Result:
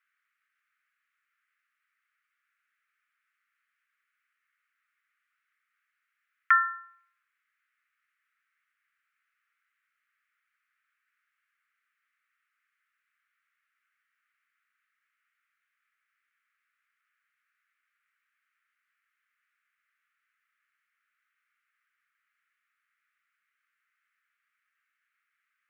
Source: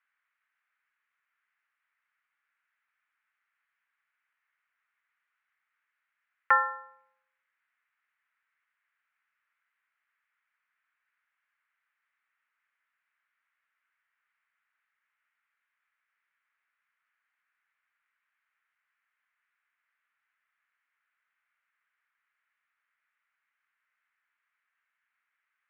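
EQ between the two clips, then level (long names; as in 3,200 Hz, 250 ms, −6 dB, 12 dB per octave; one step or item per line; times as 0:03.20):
elliptic high-pass filter 1,200 Hz, stop band 40 dB
dynamic equaliser 2,400 Hz, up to +5 dB, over −47 dBFS, Q 3.3
+2.5 dB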